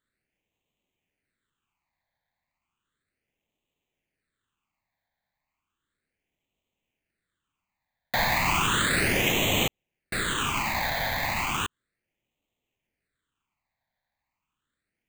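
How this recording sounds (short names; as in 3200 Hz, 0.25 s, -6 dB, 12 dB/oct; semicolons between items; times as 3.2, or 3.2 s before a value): aliases and images of a low sample rate 5400 Hz, jitter 0%; phasing stages 8, 0.34 Hz, lowest notch 370–1500 Hz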